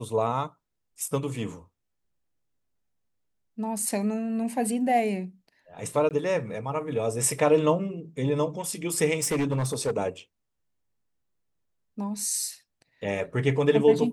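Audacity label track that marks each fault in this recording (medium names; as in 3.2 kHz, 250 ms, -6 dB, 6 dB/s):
6.090000	6.110000	dropout 18 ms
9.200000	9.910000	clipped -22 dBFS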